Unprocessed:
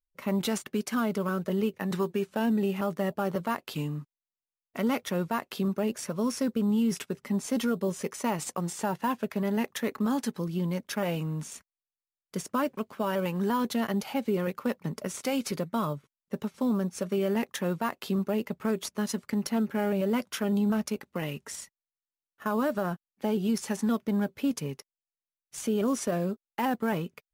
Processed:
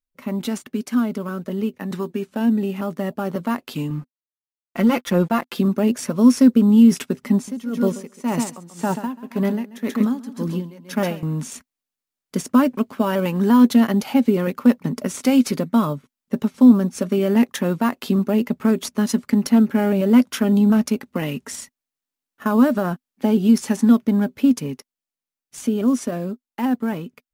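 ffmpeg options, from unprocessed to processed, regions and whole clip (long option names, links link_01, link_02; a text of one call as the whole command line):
ffmpeg -i in.wav -filter_complex "[0:a]asettb=1/sr,asplit=3[link_01][link_02][link_03];[link_01]atrim=end=3.904[link_04];[link_02]atrim=start=3.9:end=5.59,asetpts=PTS-STARTPTS,afade=type=in:duration=0.004:curve=qsin,afade=type=out:start_time=1.686:duration=0.004:curve=qsin,aeval=exprs='sgn(val(0))*max(abs(val(0))-0.00282,0)':channel_layout=same,bass=frequency=250:gain=-1,treble=frequency=4000:gain=-3,aecho=1:1:5.8:0.83,atrim=end_sample=74529[link_05];[link_03]atrim=start=5.586[link_06];[link_04][link_05]acrossfade=duration=0.004:curve1=hsin:curve2=qsin[link_07];[link_07][link_06]acrossfade=duration=0.004:curve1=qsin:curve2=hsin,asettb=1/sr,asplit=3[link_08][link_09][link_10];[link_08]atrim=end=7.344[link_11];[link_09]atrim=start=7.34:end=11.23,asetpts=PTS-STARTPTS,afade=type=in:duration=0.004:curve=qsin,afade=type=out:start_time=3.886:duration=0.004:curve=qsin,aecho=1:1:135|270|405:0.376|0.101|0.0274,atrim=end_sample=171549,aeval=exprs='val(0)*pow(10,-19*(0.5-0.5*cos(2*PI*1.9*n/s))/20)':channel_layout=same[link_12];[link_10]atrim=start=11.226[link_13];[link_11][link_12]acrossfade=duration=0.004:curve1=hsin:curve2=qsin[link_14];[link_14][link_13]acrossfade=duration=0.004:curve1=qsin:curve2=hsin,equalizer=frequency=250:width=4.1:gain=12,dynaudnorm=framelen=700:gausssize=11:maxgain=8.5dB" out.wav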